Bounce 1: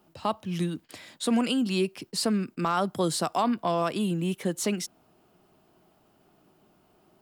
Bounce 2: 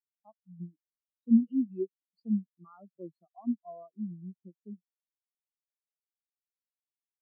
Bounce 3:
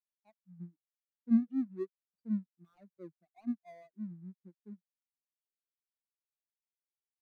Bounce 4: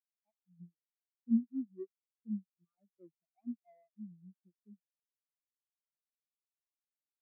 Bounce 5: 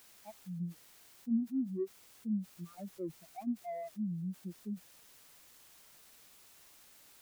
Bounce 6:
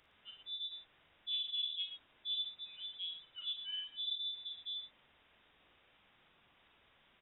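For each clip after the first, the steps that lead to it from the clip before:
spectral contrast expander 4:1; trim +2 dB
median filter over 41 samples; trim -4.5 dB
in parallel at -1 dB: compression, threshold -39 dBFS, peak gain reduction 16.5 dB; on the sum: spectral contrast expander 1.5:1; trim -3.5 dB
level flattener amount 70%; trim -4 dB
valve stage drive 32 dB, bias 0.35; frequency inversion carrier 3.7 kHz; multi-tap echo 42/56/113 ms -9.5/-7.5/-9 dB; trim -2 dB

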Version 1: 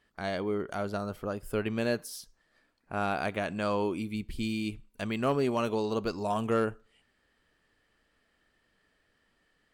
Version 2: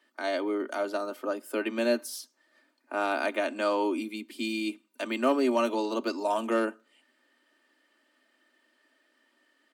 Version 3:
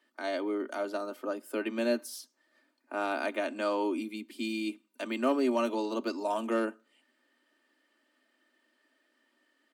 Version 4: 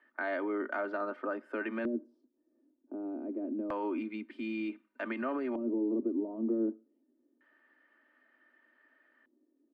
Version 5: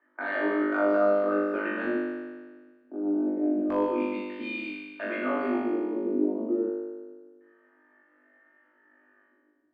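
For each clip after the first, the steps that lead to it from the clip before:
steep high-pass 230 Hz 96 dB/octave; comb 3.3 ms, depth 60%; trim +2 dB
bass shelf 200 Hz +6.5 dB; trim -4 dB
peak limiter -28 dBFS, peak gain reduction 10.5 dB; LFO low-pass square 0.27 Hz 330–1700 Hz
level-controlled noise filter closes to 1.5 kHz, open at -32 dBFS; flutter echo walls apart 3.4 m, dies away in 1.5 s

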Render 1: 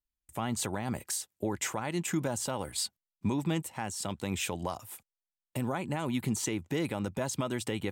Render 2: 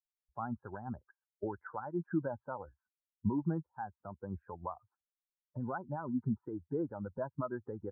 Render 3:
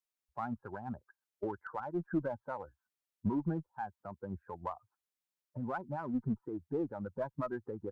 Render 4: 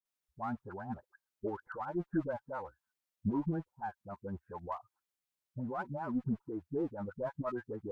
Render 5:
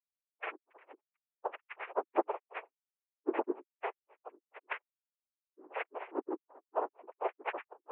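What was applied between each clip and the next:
expander on every frequency bin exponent 2; Chebyshev low-pass 1.6 kHz, order 8; trim +1 dB
bass shelf 89 Hz -8 dB; in parallel at -6 dB: one-sided clip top -39 dBFS; on the sum: trim -1.5 dB
phase dispersion highs, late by 55 ms, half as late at 630 Hz
expander on every frequency bin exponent 3; noise-vocoded speech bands 4; mistuned SSB +93 Hz 240–2500 Hz; trim +6 dB

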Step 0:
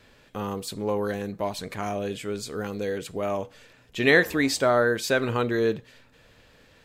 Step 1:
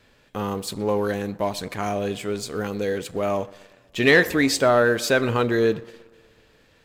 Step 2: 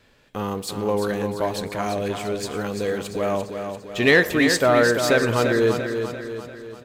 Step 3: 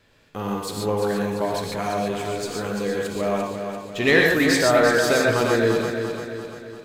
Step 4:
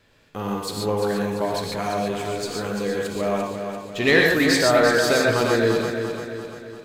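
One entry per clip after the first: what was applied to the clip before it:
tape echo 122 ms, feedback 70%, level -20 dB, low-pass 2.4 kHz; waveshaping leveller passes 1
feedback delay 343 ms, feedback 51%, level -7 dB
gated-style reverb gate 160 ms rising, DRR 0.5 dB; trim -2.5 dB
dynamic bell 4.4 kHz, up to +4 dB, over -44 dBFS, Q 4.4

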